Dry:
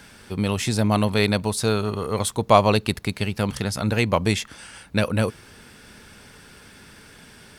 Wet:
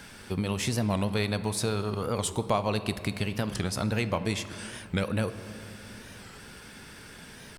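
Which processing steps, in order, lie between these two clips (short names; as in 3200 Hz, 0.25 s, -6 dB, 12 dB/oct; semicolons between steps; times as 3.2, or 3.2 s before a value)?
compressor 3:1, threshold -27 dBFS, peak gain reduction 13.5 dB; on a send at -11 dB: reverb RT60 2.5 s, pre-delay 5 ms; on the sum: record warp 45 rpm, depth 160 cents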